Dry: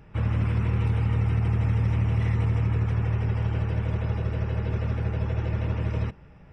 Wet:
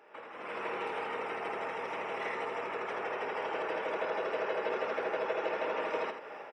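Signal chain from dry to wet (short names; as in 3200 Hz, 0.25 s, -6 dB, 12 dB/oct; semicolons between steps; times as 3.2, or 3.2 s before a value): compressor 5:1, threshold -35 dBFS, peak gain reduction 14 dB; HPF 440 Hz 24 dB/oct; high shelf 2900 Hz -9.5 dB; loudspeakers at several distances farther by 18 m -12 dB, 29 m -8 dB; AGC gain up to 15 dB; gain +2 dB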